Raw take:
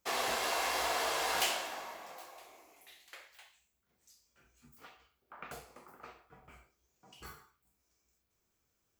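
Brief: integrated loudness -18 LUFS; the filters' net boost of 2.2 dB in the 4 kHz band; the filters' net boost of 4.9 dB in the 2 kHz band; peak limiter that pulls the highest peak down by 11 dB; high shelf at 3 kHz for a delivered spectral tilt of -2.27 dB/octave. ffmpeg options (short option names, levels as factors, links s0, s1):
-af "equalizer=f=2000:t=o:g=7,highshelf=f=3000:g=-5.5,equalizer=f=4000:t=o:g=4.5,volume=10,alimiter=limit=0.447:level=0:latency=1"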